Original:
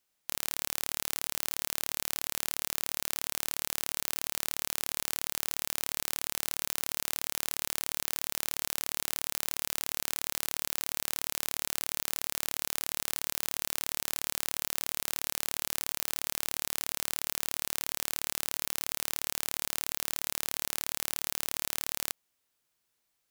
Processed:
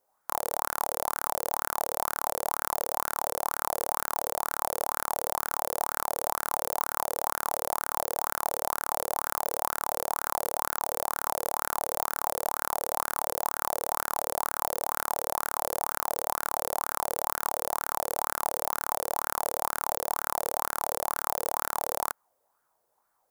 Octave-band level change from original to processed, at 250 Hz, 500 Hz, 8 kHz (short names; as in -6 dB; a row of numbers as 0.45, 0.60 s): +2.5, +14.0, -1.5 dB